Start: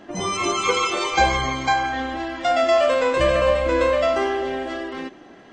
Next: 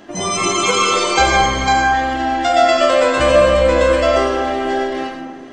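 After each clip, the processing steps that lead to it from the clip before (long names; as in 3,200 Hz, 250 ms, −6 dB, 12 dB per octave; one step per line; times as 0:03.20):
high-shelf EQ 5,000 Hz +9 dB
comb and all-pass reverb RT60 1.6 s, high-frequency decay 0.3×, pre-delay 50 ms, DRR 0.5 dB
level +2.5 dB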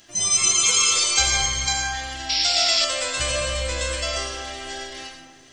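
sound drawn into the spectrogram noise, 0:02.29–0:02.85, 2,000–5,700 Hz −23 dBFS
drawn EQ curve 120 Hz 0 dB, 230 Hz −15 dB, 1,100 Hz −9 dB, 5,800 Hz +12 dB
level −6.5 dB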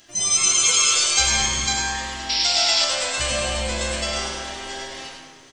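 mains-hum notches 50/100/150/200 Hz
on a send: echo with shifted repeats 101 ms, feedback 49%, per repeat +150 Hz, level −8 dB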